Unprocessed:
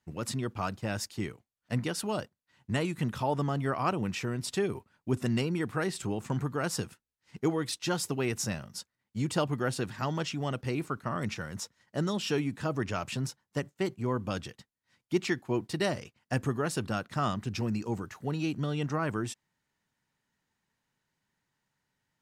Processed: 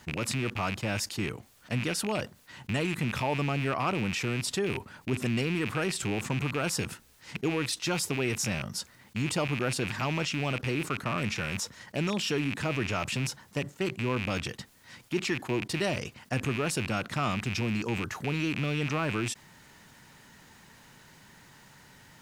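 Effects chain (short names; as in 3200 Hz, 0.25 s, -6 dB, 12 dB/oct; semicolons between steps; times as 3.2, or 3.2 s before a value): rattling part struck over -40 dBFS, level -26 dBFS; fast leveller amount 50%; gain -3 dB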